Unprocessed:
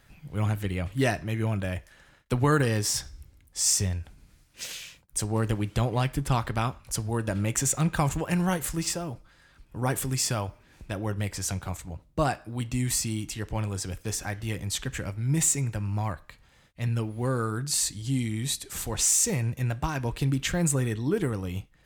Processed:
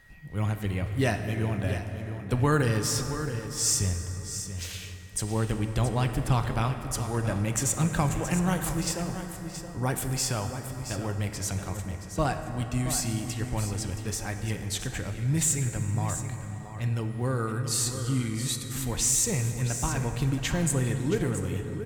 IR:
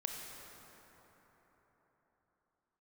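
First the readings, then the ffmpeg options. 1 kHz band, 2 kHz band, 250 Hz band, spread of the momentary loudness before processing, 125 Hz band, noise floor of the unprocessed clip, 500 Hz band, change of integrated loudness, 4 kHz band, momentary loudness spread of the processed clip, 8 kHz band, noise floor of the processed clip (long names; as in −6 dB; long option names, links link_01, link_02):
−0.5 dB, −0.5 dB, 0.0 dB, 12 LU, +0.5 dB, −59 dBFS, −0.5 dB, −0.5 dB, −1.0 dB, 9 LU, −1.0 dB, −40 dBFS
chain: -filter_complex "[0:a]aeval=exprs='val(0)+0.00178*sin(2*PI*1900*n/s)':channel_layout=same,aecho=1:1:674:0.299,asplit=2[link_01][link_02];[1:a]atrim=start_sample=2205,lowshelf=frequency=94:gain=7.5[link_03];[link_02][link_03]afir=irnorm=-1:irlink=0,volume=0.5dB[link_04];[link_01][link_04]amix=inputs=2:normalize=0,volume=-7dB"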